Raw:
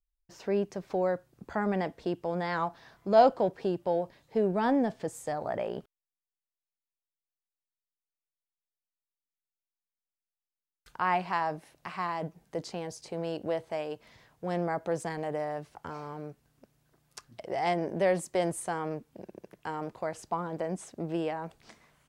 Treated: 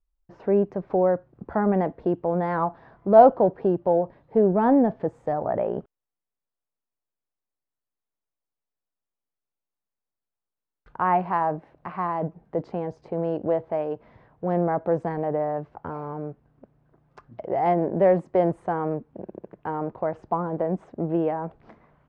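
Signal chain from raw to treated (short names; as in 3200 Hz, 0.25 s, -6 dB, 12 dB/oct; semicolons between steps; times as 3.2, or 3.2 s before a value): LPF 1100 Hz 12 dB/oct; gain +8 dB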